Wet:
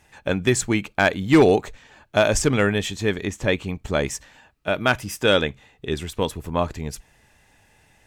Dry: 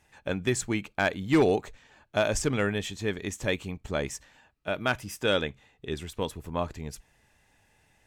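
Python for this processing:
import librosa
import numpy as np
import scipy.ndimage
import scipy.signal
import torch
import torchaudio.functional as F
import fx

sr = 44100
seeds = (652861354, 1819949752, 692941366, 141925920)

y = fx.high_shelf(x, sr, hz=fx.line((3.25, 3900.0), (3.67, 6400.0)), db=-9.5, at=(3.25, 3.67), fade=0.02)
y = y * 10.0 ** (7.5 / 20.0)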